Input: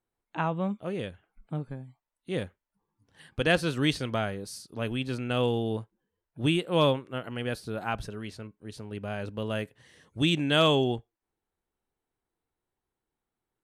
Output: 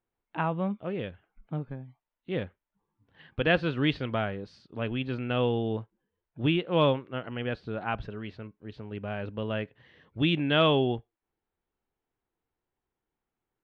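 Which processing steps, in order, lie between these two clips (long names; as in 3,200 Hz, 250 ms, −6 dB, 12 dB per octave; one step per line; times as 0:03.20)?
low-pass filter 3,400 Hz 24 dB per octave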